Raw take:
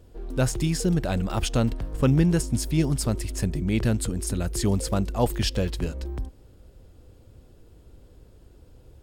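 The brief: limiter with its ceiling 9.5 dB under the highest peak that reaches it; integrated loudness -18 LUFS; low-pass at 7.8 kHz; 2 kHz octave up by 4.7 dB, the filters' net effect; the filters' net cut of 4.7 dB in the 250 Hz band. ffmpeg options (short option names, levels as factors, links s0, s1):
-af "lowpass=7800,equalizer=f=250:t=o:g=-7.5,equalizer=f=2000:t=o:g=6.5,volume=4.47,alimiter=limit=0.422:level=0:latency=1"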